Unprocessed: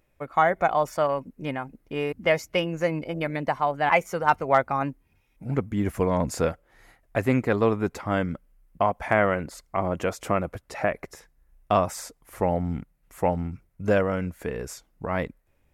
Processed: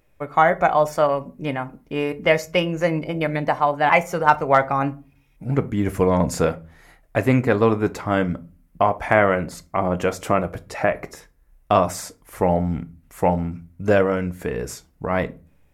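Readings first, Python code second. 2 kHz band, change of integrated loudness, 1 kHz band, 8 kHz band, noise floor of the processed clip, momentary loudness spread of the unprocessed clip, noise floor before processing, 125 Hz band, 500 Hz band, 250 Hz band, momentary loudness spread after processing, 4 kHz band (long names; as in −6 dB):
+5.0 dB, +5.0 dB, +5.0 dB, +4.5 dB, −58 dBFS, 12 LU, −67 dBFS, +5.0 dB, +5.0 dB, +5.0 dB, 13 LU, +4.5 dB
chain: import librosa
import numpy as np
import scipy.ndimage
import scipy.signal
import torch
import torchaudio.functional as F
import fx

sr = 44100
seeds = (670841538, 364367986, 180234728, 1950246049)

y = fx.room_shoebox(x, sr, seeds[0], volume_m3=170.0, walls='furnished', distance_m=0.4)
y = F.gain(torch.from_numpy(y), 4.5).numpy()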